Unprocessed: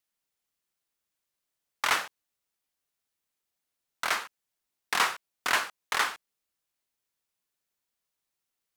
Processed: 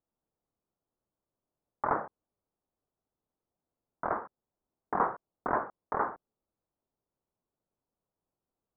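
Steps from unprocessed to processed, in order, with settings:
Gaussian smoothing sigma 9.3 samples
level +8.5 dB

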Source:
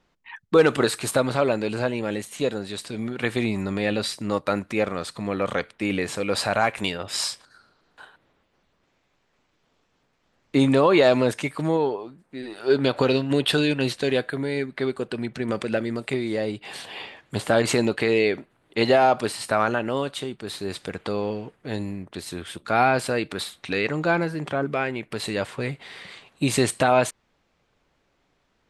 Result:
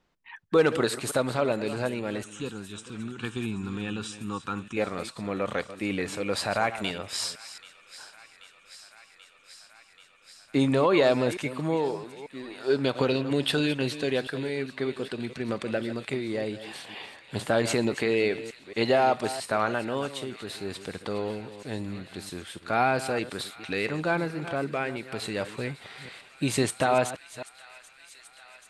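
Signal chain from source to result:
delay that plays each chunk backwards 223 ms, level −13 dB
0:02.24–0:04.77: phaser with its sweep stopped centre 3,000 Hz, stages 8
delay with a high-pass on its return 784 ms, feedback 82%, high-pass 1,700 Hz, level −17 dB
level −4.5 dB

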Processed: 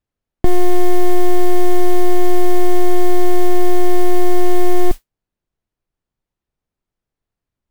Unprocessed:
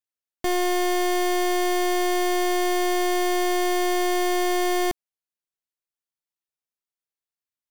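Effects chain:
spectral tilt −4.5 dB per octave
noise that follows the level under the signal 32 dB
boost into a limiter +12 dB
level −1 dB

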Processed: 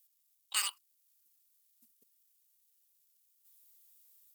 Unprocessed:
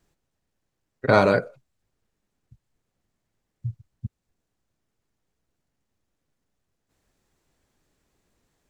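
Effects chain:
high-shelf EQ 3,800 Hz +11.5 dB
automatic gain control gain up to 5 dB
surface crackle 320 per second −59 dBFS
high-pass filter 1,100 Hz 6 dB per octave
first difference
wrong playback speed 7.5 ips tape played at 15 ips
level +4 dB

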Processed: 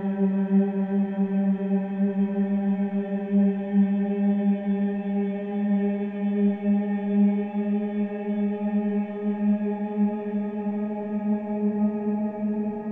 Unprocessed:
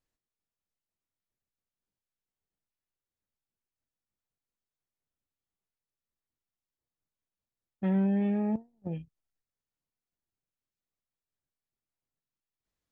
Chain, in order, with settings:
transient designer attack −1 dB, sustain +6 dB
extreme stretch with random phases 27×, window 0.50 s, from 0:08.02
level +2.5 dB

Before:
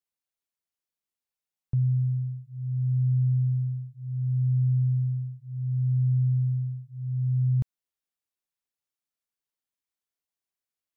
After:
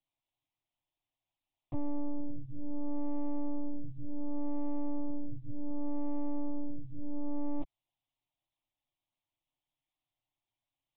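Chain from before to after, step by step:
soft clipping −35 dBFS, distortion −7 dB
one-pitch LPC vocoder at 8 kHz 290 Hz
phaser with its sweep stopped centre 300 Hz, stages 8
level +8 dB

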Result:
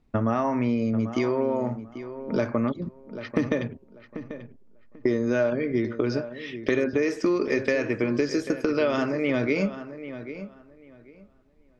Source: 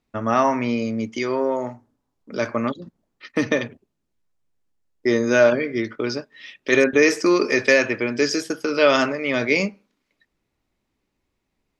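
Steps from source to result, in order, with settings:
spectral tilt −2.5 dB per octave
downward compressor 6 to 1, threshold −25 dBFS, peak gain reduction 15.5 dB
feedback echo with a low-pass in the loop 790 ms, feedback 21%, low-pass 2,900 Hz, level −12 dB
level +3.5 dB

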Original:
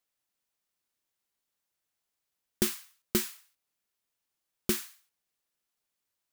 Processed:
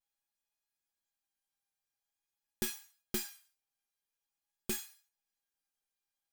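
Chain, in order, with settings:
tuned comb filter 820 Hz, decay 0.19 s, harmonics all, mix 90%
pitch vibrato 0.47 Hz 33 cents
level +8.5 dB

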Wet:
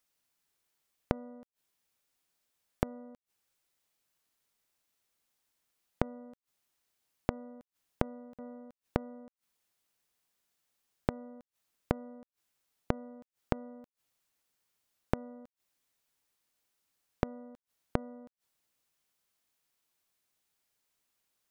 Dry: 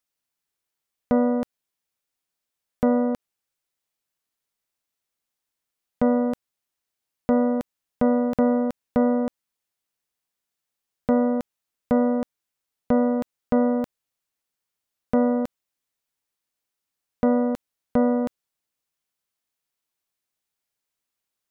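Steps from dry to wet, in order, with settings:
gate with flip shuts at −23 dBFS, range −30 dB
level +3.5 dB

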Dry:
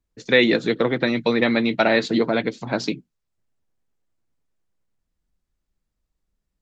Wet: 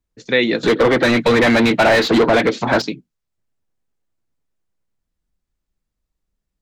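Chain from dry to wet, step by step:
0:00.63–0:02.82: mid-hump overdrive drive 28 dB, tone 1,800 Hz, clips at −4.5 dBFS

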